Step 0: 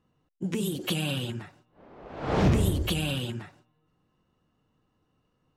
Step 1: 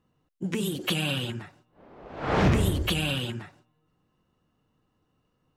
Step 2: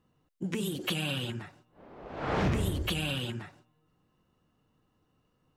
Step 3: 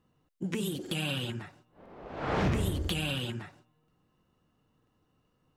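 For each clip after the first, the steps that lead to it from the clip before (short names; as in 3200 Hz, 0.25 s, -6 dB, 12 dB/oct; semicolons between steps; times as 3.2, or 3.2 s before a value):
dynamic EQ 1700 Hz, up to +6 dB, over -45 dBFS, Q 0.71
compressor 1.5:1, threshold -36 dBFS, peak gain reduction 7 dB
crackling interface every 0.99 s, samples 2048, repeat, from 0.82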